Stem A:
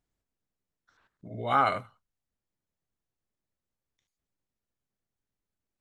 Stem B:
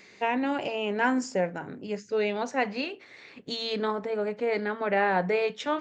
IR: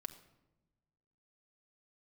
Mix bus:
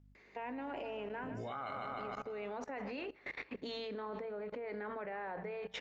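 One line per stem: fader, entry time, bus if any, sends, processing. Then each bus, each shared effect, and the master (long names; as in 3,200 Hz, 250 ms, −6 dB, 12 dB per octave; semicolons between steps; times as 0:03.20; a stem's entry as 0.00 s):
−0.5 dB, 0.00 s, no send, echo send −8.5 dB, mains hum 50 Hz, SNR 23 dB
+2.5 dB, 0.15 s, send −20 dB, echo send −20.5 dB, downward compressor 20 to 1, threshold −35 dBFS, peak gain reduction 16 dB; octave-band graphic EQ 125/250/500/1,000/2,000/4,000 Hz −7/+5/+5/+6/+5/−3 dB; automatic ducking −17 dB, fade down 1.65 s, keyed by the first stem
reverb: on, RT60 1.0 s, pre-delay 5 ms
echo: repeating echo 153 ms, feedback 60%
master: low-pass filter 5,100 Hz 12 dB per octave; output level in coarse steps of 21 dB; mains-hum notches 60/120/180 Hz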